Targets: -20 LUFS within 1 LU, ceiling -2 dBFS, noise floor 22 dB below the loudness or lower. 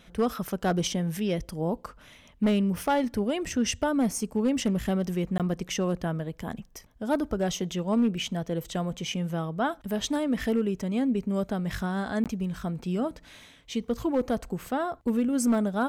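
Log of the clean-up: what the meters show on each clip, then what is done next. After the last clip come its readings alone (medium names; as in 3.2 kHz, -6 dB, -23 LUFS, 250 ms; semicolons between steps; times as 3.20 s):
clipped samples 0.5%; clipping level -18.0 dBFS; dropouts 2; longest dropout 17 ms; loudness -28.5 LUFS; peak level -18.0 dBFS; loudness target -20.0 LUFS
-> clip repair -18 dBFS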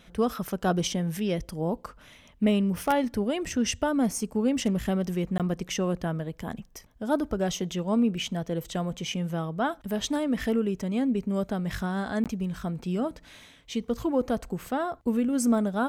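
clipped samples 0.0%; dropouts 2; longest dropout 17 ms
-> interpolate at 5.38/12.24 s, 17 ms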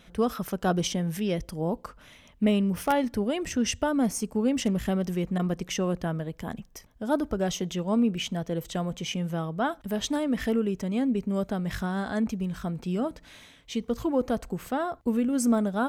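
dropouts 0; loudness -28.5 LUFS; peak level -9.0 dBFS; loudness target -20.0 LUFS
-> trim +8.5 dB; peak limiter -2 dBFS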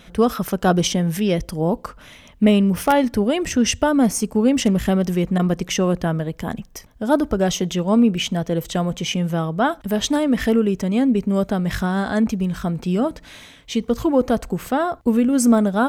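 loudness -20.0 LUFS; peak level -2.0 dBFS; noise floor -47 dBFS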